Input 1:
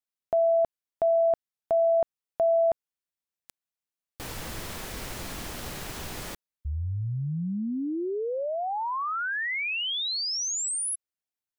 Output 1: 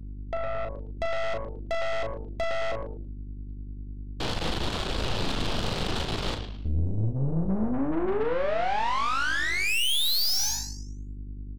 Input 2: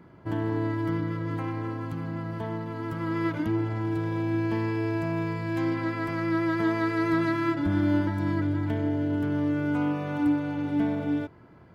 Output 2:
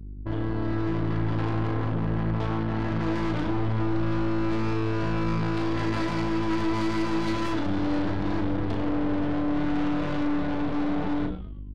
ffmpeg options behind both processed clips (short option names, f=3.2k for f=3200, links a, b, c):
-filter_complex "[0:a]lowpass=f=4.6k:w=0.5412,lowpass=f=4.6k:w=1.3066,aemphasis=mode=reproduction:type=cd,bandreject=f=60:t=h:w=6,bandreject=f=120:t=h:w=6,bandreject=f=180:t=h:w=6,bandreject=f=240:t=h:w=6,bandreject=f=300:t=h:w=6,bandreject=f=360:t=h:w=6,bandreject=f=420:t=h:w=6,anlmdn=0.398,highshelf=f=2.6k:g=-11,acompressor=threshold=-38dB:ratio=3:attack=59:release=38:knee=6:detection=rms,aexciter=amount=12.5:drive=1.7:freq=3.1k,dynaudnorm=f=590:g=3:m=7dB,aeval=exprs='val(0)+0.00794*(sin(2*PI*50*n/s)+sin(2*PI*2*50*n/s)/2+sin(2*PI*3*50*n/s)/3+sin(2*PI*4*50*n/s)/4+sin(2*PI*5*50*n/s)/5)':c=same,asplit=5[a][b][c][d][e];[b]adelay=109,afreqshift=-110,volume=-11dB[f];[c]adelay=218,afreqshift=-220,volume=-19.4dB[g];[d]adelay=327,afreqshift=-330,volume=-27.8dB[h];[e]adelay=436,afreqshift=-440,volume=-36.2dB[i];[a][f][g][h][i]amix=inputs=5:normalize=0,aeval=exprs='(tanh(50.1*val(0)+0.75)-tanh(0.75))/50.1':c=same,asplit=2[j][k];[k]adelay=37,volume=-6.5dB[l];[j][l]amix=inputs=2:normalize=0,volume=8dB"